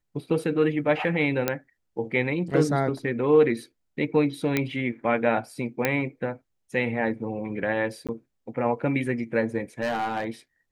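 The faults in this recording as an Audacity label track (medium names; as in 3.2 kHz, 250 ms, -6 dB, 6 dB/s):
1.480000	1.480000	pop -8 dBFS
4.570000	4.570000	pop -9 dBFS
5.850000	5.850000	pop -8 dBFS
8.070000	8.090000	dropout 17 ms
9.810000	10.240000	clipped -23 dBFS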